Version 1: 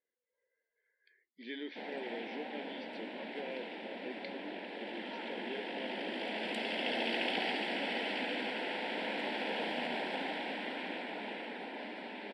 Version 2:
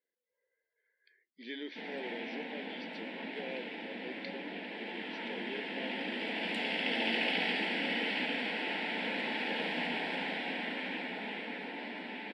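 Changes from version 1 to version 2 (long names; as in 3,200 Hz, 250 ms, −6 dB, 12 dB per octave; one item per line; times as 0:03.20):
speech: remove high-frequency loss of the air 97 metres
reverb: on, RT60 1.1 s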